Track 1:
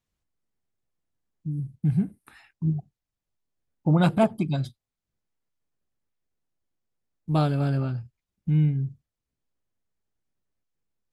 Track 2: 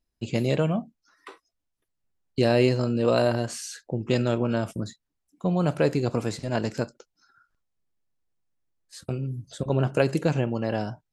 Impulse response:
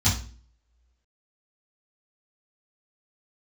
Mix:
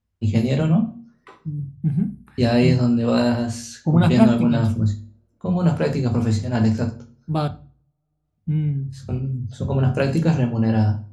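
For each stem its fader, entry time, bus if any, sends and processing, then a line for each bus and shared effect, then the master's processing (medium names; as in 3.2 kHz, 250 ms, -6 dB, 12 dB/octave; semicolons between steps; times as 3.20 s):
+1.0 dB, 0.00 s, muted 7.48–8.24 s, send -23.5 dB, none
-1.5 dB, 0.00 s, send -13.5 dB, gate -57 dBFS, range -7 dB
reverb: on, RT60 0.40 s, pre-delay 3 ms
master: tape noise reduction on one side only decoder only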